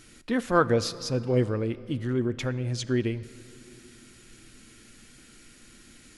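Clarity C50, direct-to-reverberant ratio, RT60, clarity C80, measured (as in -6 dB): 16.5 dB, 11.0 dB, 3.0 s, 17.0 dB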